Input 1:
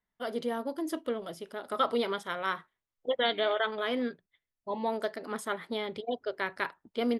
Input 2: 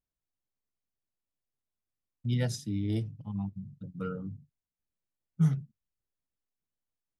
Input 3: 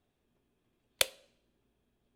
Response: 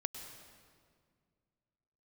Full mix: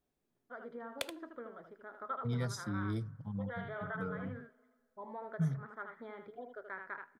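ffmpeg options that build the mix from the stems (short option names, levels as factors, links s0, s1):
-filter_complex "[0:a]lowpass=f=1500:t=q:w=2.8,adelay=300,volume=0.178,asplit=3[s0][s1][s2];[s1]volume=0.141[s3];[s2]volume=0.398[s4];[1:a]volume=1.19[s5];[2:a]highpass=110,highshelf=f=2800:g=-10,volume=0.473,asplit=2[s6][s7];[s7]volume=0.282[s8];[s0][s5]amix=inputs=2:normalize=0,asuperstop=centerf=2800:order=4:qfactor=4,acompressor=threshold=0.00447:ratio=1.5,volume=1[s9];[3:a]atrim=start_sample=2205[s10];[s3][s10]afir=irnorm=-1:irlink=0[s11];[s4][s8]amix=inputs=2:normalize=0,aecho=0:1:78:1[s12];[s6][s9][s11][s12]amix=inputs=4:normalize=0"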